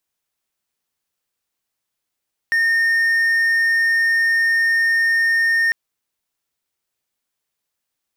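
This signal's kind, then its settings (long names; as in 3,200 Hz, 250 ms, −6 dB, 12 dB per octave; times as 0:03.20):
tone triangle 1,830 Hz −12 dBFS 3.20 s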